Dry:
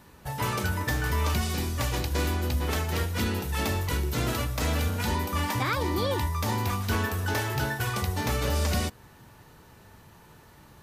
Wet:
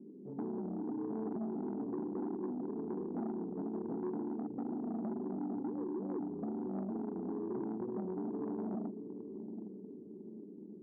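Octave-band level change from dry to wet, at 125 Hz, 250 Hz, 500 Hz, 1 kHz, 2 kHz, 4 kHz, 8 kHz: −22.0 dB, −2.5 dB, −7.0 dB, −17.5 dB, below −35 dB, below −40 dB, below −40 dB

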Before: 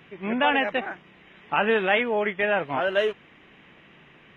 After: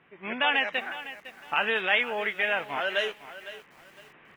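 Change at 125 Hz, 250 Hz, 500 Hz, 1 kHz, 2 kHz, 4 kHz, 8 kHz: below −10 dB, −11.0 dB, −8.0 dB, −5.0 dB, −0.5 dB, +2.0 dB, can't be measured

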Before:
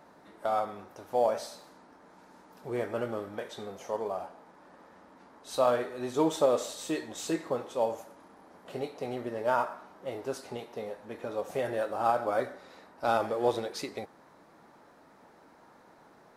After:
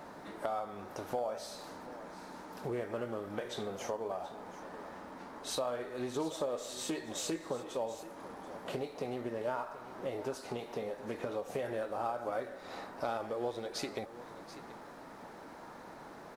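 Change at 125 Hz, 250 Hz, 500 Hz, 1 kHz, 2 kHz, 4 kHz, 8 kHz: −3.0, −4.5, −6.5, −7.5, −5.0, −1.5, −1.0 decibels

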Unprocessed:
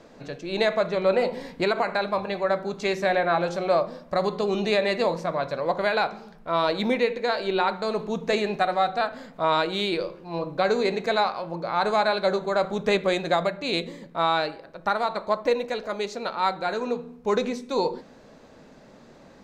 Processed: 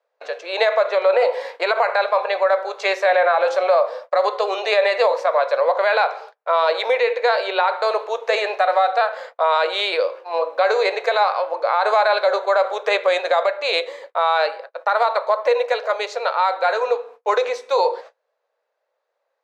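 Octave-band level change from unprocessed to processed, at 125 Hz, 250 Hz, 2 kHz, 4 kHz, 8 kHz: below −35 dB, below −10 dB, +7.0 dB, +4.5 dB, can't be measured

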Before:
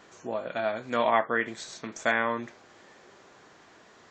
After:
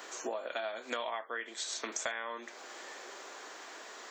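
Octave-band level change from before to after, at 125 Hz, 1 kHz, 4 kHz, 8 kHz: below −20 dB, −11.0 dB, 0.0 dB, +5.5 dB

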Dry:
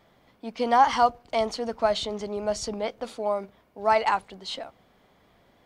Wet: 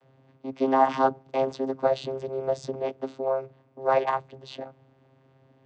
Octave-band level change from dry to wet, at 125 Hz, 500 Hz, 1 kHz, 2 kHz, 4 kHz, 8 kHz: +4.0 dB, +1.0 dB, −3.0 dB, −4.5 dB, −10.0 dB, below −10 dB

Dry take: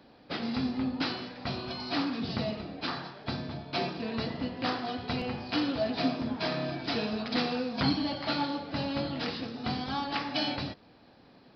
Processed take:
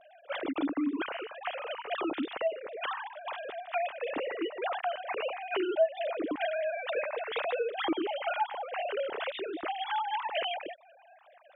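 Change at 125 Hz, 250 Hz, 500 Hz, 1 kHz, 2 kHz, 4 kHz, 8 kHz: below −25 dB, −5.5 dB, +4.0 dB, +2.0 dB, +1.0 dB, −5.5 dB, can't be measured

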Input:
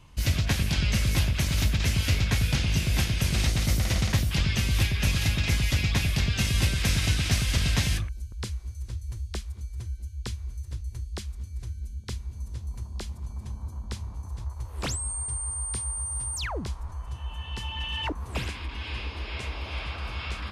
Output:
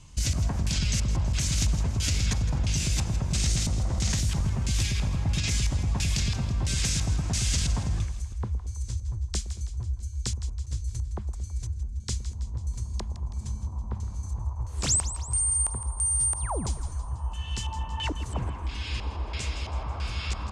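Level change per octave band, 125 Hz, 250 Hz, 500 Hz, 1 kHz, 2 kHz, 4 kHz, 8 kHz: −1.0, −2.0, −2.5, 0.0, −7.0, −2.5, +4.5 decibels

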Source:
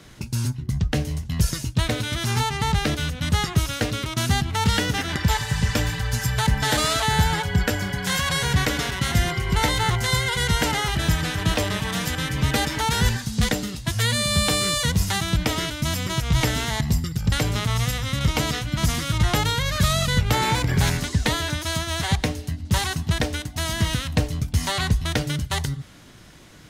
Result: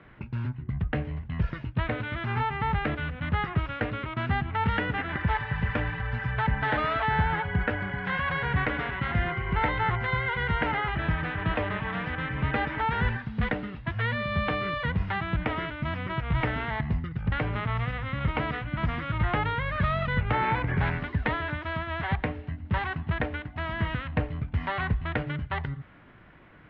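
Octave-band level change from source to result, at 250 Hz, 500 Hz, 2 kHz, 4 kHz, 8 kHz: −6.0 dB, −4.5 dB, −3.0 dB, −16.0 dB, below −40 dB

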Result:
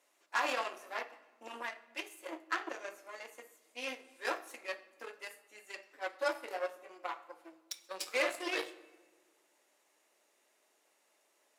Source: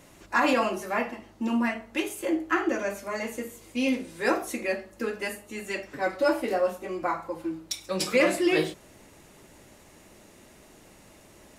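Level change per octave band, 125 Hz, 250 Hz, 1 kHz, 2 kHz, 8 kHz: below −35 dB, −22.0 dB, −9.5 dB, −8.5 dB, −10.5 dB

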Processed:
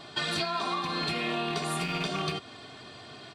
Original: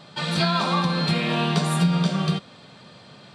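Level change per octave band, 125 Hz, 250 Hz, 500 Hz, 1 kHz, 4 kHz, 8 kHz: −15.5, −12.5, −5.5, −5.5, −5.0, −4.5 decibels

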